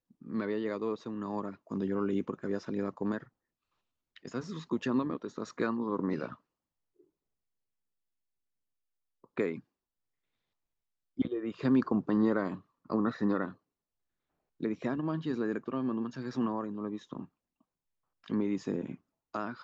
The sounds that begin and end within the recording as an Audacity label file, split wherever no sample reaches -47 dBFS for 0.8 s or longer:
4.160000	6.340000	sound
9.240000	9.600000	sound
11.180000	13.530000	sound
14.610000	17.250000	sound